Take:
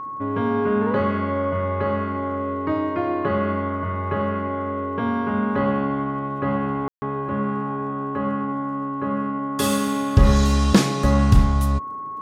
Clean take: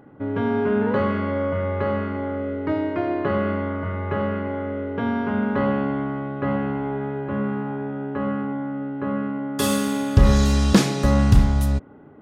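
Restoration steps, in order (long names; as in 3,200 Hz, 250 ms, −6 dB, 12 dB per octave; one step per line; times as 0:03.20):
click removal
notch filter 1,100 Hz, Q 30
ambience match 0:06.88–0:07.02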